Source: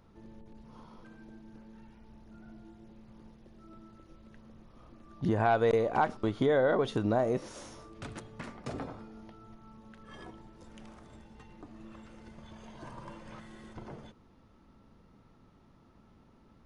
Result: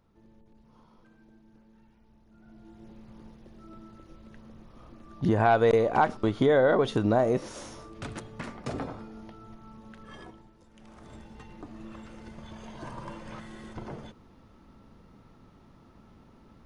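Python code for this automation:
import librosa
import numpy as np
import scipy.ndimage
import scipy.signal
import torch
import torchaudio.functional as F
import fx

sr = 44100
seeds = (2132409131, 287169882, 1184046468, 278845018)

y = fx.gain(x, sr, db=fx.line((2.3, -6.5), (2.85, 4.5), (10.04, 4.5), (10.7, -7.0), (11.09, 5.5)))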